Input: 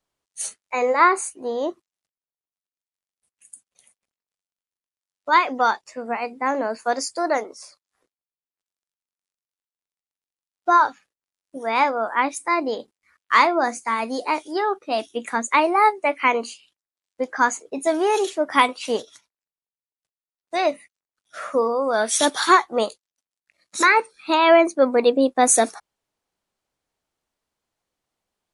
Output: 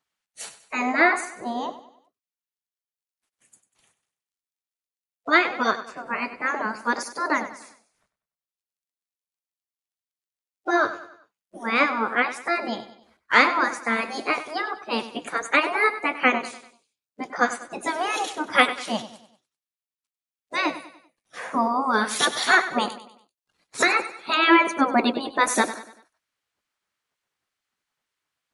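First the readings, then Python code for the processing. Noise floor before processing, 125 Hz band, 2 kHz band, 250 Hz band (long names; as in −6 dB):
below −85 dBFS, can't be measured, +2.0 dB, −1.0 dB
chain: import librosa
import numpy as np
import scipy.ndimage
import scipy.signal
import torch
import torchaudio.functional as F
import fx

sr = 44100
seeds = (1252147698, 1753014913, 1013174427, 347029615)

y = fx.high_shelf(x, sr, hz=2800.0, db=-10.0)
y = fx.spec_gate(y, sr, threshold_db=-10, keep='weak')
y = fx.echo_feedback(y, sr, ms=97, feedback_pct=43, wet_db=-13.5)
y = y * 10.0 ** (7.5 / 20.0)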